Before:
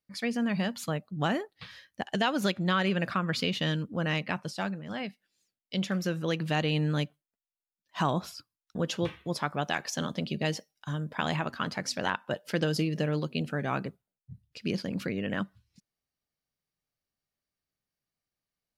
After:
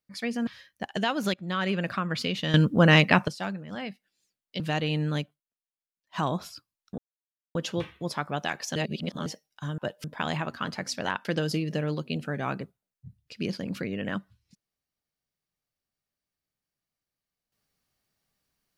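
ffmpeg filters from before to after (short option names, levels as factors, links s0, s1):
-filter_complex "[0:a]asplit=14[s0][s1][s2][s3][s4][s5][s6][s7][s8][s9][s10][s11][s12][s13];[s0]atrim=end=0.472[s14];[s1]atrim=start=1.648:end=2.52,asetpts=PTS-STARTPTS,afade=t=out:st=0.868:d=0.004:c=hsin:silence=0.211349[s15];[s2]atrim=start=2.52:end=3.722,asetpts=PTS-STARTPTS,afade=t=in:d=0.33:silence=0.211349[s16];[s3]atrim=start=3.718:end=4.462,asetpts=PTS-STARTPTS,volume=3.98[s17];[s4]atrim=start=4.458:end=5.782[s18];[s5]atrim=start=6.418:end=7.24,asetpts=PTS-STARTPTS,afade=t=out:st=0.582:d=0.24:silence=0.398107[s19];[s6]atrim=start=7.24:end=7.83,asetpts=PTS-STARTPTS,volume=0.398[s20];[s7]atrim=start=7.83:end=8.8,asetpts=PTS-STARTPTS,afade=t=in:d=0.24:silence=0.398107,afade=t=out:st=0.966:d=0.004:c=hsin,apad=pad_dur=0.57[s21];[s8]atrim=start=8.8:end=10.012,asetpts=PTS-STARTPTS,afade=t=in:d=0.004:c=hsin[s22];[s9]atrim=start=10.008:end=10.512,asetpts=PTS-STARTPTS,areverse[s23];[s10]atrim=start=10.508:end=11.032[s24];[s11]atrim=start=12.238:end=12.502[s25];[s12]atrim=start=11.028:end=12.242[s26];[s13]atrim=start=12.498[s27];[s15][s16]concat=n=2:v=0:a=1[s28];[s14][s28]acrossfade=d=0.004:c1=hsin:c2=hsin[s29];[s29][s17]acrossfade=d=0.004:c1=hsin:c2=hsin[s30];[s30][s18]acrossfade=d=0.004:c1=hsin:c2=hsin[s31];[s19][s20][s21][s22]concat=n=4:v=0:a=1[s32];[s31][s32]acrossfade=d=0.004:c1=hsin:c2=hsin[s33];[s33][s23]acrossfade=d=0.004:c1=hsin:c2=hsin[s34];[s34][s24]acrossfade=d=0.004:c1=hsin:c2=hsin[s35];[s35][s25]acrossfade=d=0.004:c1=hsin:c2=hsin[s36];[s36][s26]acrossfade=d=0.004:c1=hsin:c2=hsin[s37];[s37][s27]acrossfade=d=0.004:c1=hsin:c2=hsin"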